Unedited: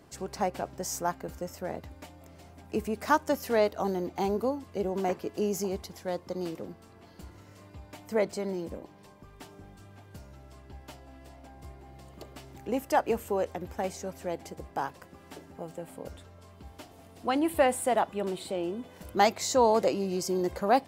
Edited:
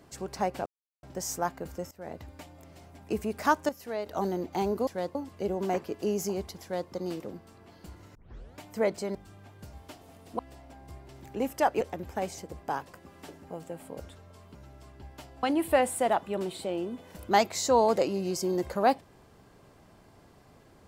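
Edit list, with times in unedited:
0:00.66: splice in silence 0.37 s
0:01.54–0:01.85: fade in, from −21 dB
0:03.32–0:03.69: clip gain −9.5 dB
0:05.97–0:06.25: duplicate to 0:04.50
0:07.50: tape start 0.43 s
0:08.50–0:09.67: remove
0:10.25–0:11.13: swap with 0:16.63–0:17.29
0:11.83–0:12.41: remove
0:13.13–0:13.43: remove
0:14.00–0:14.46: remove

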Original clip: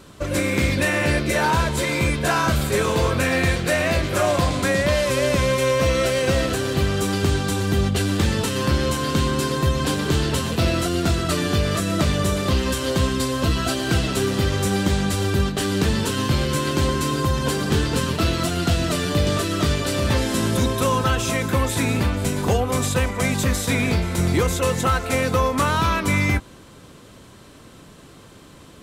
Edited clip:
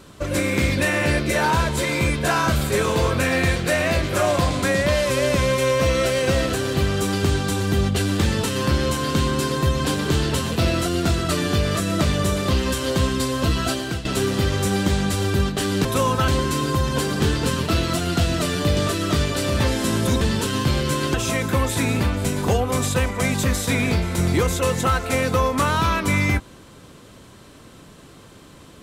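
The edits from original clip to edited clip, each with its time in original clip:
0:13.71–0:14.05: fade out, to −14 dB
0:15.85–0:16.78: swap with 0:20.71–0:21.14

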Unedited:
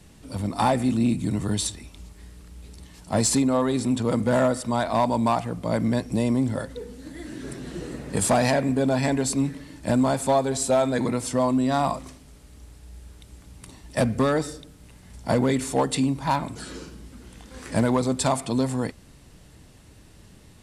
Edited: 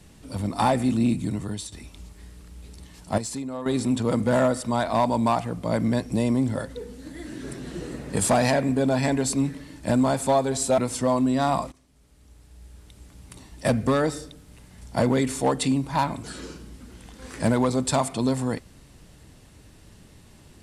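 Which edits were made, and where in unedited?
0:01.13–0:01.72: fade out, to −12.5 dB
0:03.18–0:03.66: clip gain −11 dB
0:10.78–0:11.10: remove
0:12.04–0:14.06: fade in equal-power, from −19.5 dB

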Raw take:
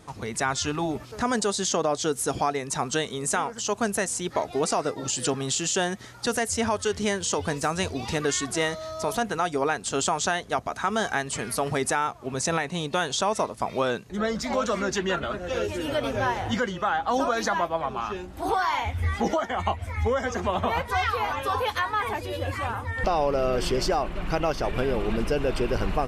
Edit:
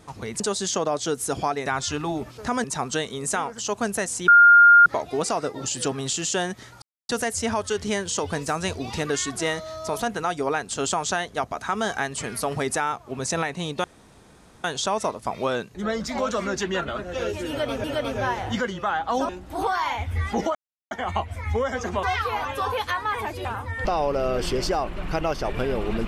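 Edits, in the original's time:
0:00.40–0:01.38: move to 0:02.64
0:04.28: insert tone 1,410 Hz −8.5 dBFS 0.58 s
0:06.24: splice in silence 0.27 s
0:12.99: splice in room tone 0.80 s
0:15.83–0:16.19: repeat, 2 plays
0:17.28–0:18.16: remove
0:19.42: splice in silence 0.36 s
0:20.54–0:20.91: remove
0:22.33–0:22.64: remove

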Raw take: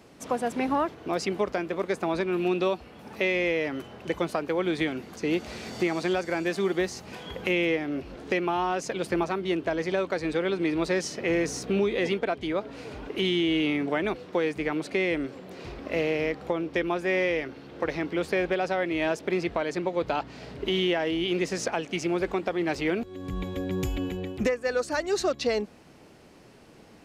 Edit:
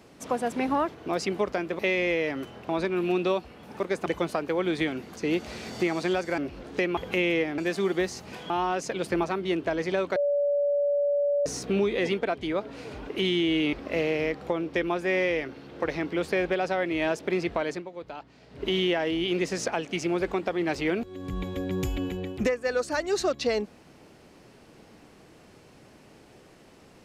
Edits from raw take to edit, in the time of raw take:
0:01.79–0:02.05: swap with 0:03.16–0:04.06
0:06.38–0:07.30: swap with 0:07.91–0:08.50
0:10.16–0:11.46: beep over 574 Hz −21.5 dBFS
0:13.73–0:15.73: remove
0:19.70–0:20.64: duck −12 dB, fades 0.14 s

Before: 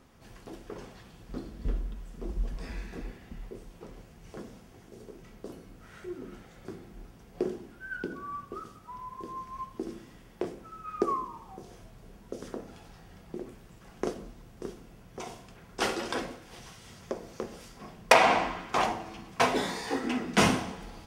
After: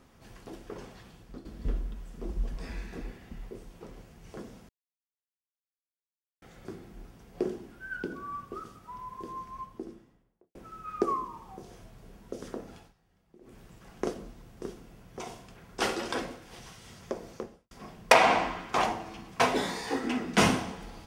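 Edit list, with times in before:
0:01.10–0:01.45: fade out, to −11 dB
0:04.69–0:06.42: silence
0:09.29–0:10.55: fade out and dull
0:12.76–0:13.59: duck −18.5 dB, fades 0.18 s
0:17.28–0:17.71: fade out and dull

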